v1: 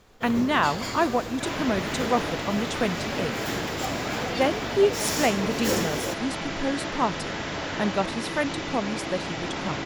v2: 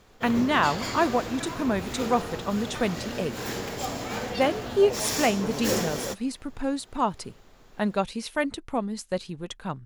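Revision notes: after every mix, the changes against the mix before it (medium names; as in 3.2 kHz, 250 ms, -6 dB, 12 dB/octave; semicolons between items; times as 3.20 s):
second sound: muted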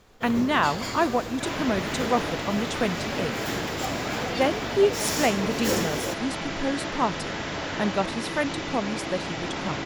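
second sound: unmuted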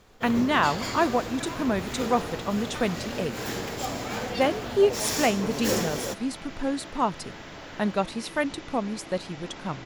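second sound -11.0 dB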